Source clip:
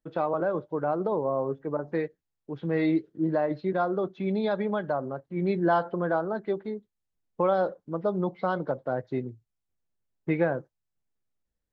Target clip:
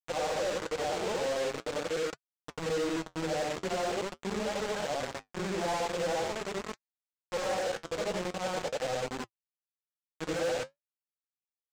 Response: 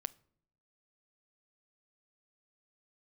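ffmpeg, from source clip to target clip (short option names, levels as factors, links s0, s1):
-af "afftfilt=real='re':imag='-im':win_size=8192:overlap=0.75,equalizer=f=500:t=o:w=0.33:g=11,equalizer=f=800:t=o:w=0.33:g=8,equalizer=f=4000:t=o:w=0.33:g=-6,acompressor=mode=upward:threshold=0.00708:ratio=2.5,aresample=16000,acrusher=bits=4:mix=0:aa=0.000001,aresample=44100,volume=16.8,asoftclip=hard,volume=0.0596,flanger=delay=3.5:depth=9.7:regen=-60:speed=0.43:shape=triangular"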